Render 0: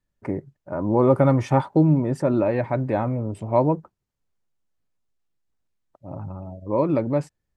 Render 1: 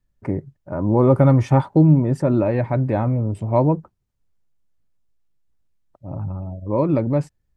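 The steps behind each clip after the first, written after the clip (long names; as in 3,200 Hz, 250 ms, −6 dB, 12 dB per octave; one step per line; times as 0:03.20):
low-shelf EQ 160 Hz +10.5 dB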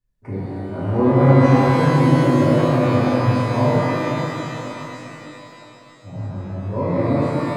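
reverb with rising layers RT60 3.5 s, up +12 semitones, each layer −8 dB, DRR −11 dB
level −10 dB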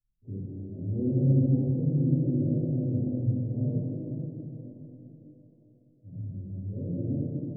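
Gaussian smoothing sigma 24 samples
level −7.5 dB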